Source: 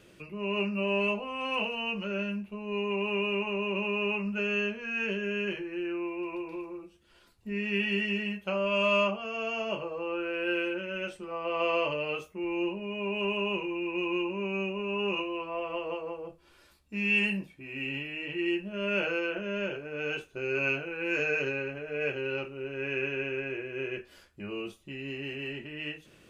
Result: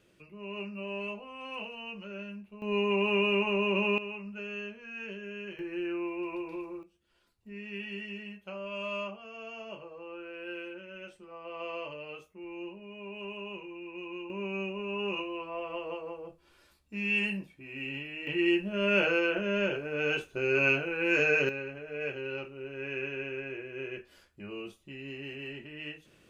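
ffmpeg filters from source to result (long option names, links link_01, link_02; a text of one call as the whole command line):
ffmpeg -i in.wav -af "asetnsamples=nb_out_samples=441:pad=0,asendcmd='2.62 volume volume 3dB;3.98 volume volume -9.5dB;5.59 volume volume -0.5dB;6.83 volume volume -10.5dB;14.3 volume volume -3dB;18.27 volume volume 3.5dB;21.49 volume volume -4dB',volume=-9dB" out.wav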